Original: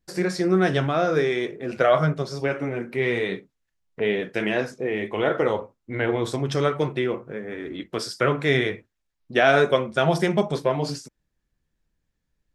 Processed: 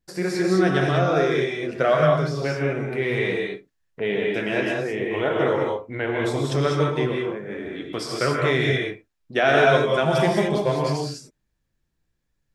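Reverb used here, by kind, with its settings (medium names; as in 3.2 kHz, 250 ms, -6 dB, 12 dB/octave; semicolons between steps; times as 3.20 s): gated-style reverb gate 230 ms rising, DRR -1 dB; trim -2 dB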